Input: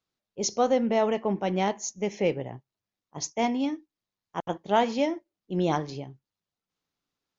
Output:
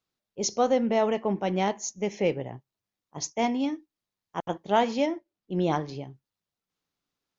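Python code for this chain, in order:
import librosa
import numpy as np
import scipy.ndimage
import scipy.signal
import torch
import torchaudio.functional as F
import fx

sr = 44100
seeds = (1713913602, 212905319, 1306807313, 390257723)

y = fx.air_absorb(x, sr, metres=67.0, at=(5.06, 6.0))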